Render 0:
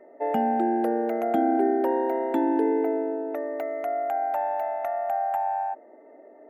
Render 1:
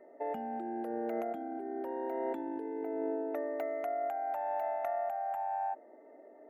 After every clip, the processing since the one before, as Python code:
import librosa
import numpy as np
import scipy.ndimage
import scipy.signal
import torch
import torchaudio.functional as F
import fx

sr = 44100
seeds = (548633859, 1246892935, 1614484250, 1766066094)

y = fx.over_compress(x, sr, threshold_db=-28.0, ratio=-1.0)
y = y * librosa.db_to_amplitude(-8.0)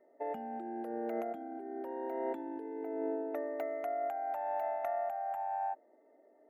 y = fx.upward_expand(x, sr, threshold_db=-51.0, expansion=1.5)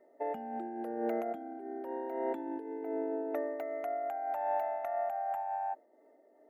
y = fx.am_noise(x, sr, seeds[0], hz=5.7, depth_pct=55)
y = y * librosa.db_to_amplitude(5.0)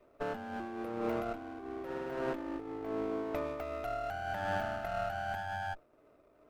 y = fx.lower_of_two(x, sr, delay_ms=0.37)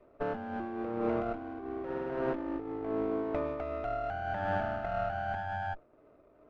y = fx.spacing_loss(x, sr, db_at_10k=26)
y = y * librosa.db_to_amplitude(4.5)